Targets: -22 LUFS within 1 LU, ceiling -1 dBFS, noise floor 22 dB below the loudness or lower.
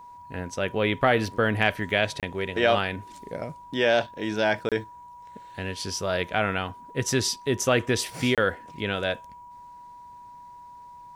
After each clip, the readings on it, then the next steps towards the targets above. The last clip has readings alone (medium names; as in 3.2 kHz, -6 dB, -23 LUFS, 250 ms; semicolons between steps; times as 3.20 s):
dropouts 3; longest dropout 27 ms; steady tone 970 Hz; tone level -43 dBFS; loudness -26.0 LUFS; peak level -7.0 dBFS; loudness target -22.0 LUFS
-> interpolate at 2.20/4.69/8.35 s, 27 ms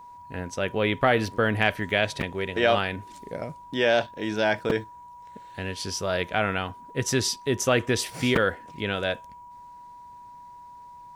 dropouts 0; steady tone 970 Hz; tone level -43 dBFS
-> band-stop 970 Hz, Q 30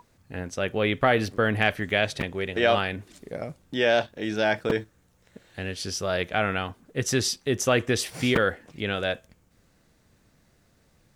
steady tone not found; loudness -26.0 LUFS; peak level -7.5 dBFS; loudness target -22.0 LUFS
-> trim +4 dB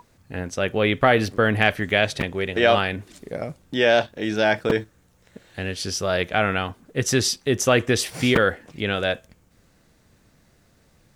loudness -22.0 LUFS; peak level -3.5 dBFS; noise floor -60 dBFS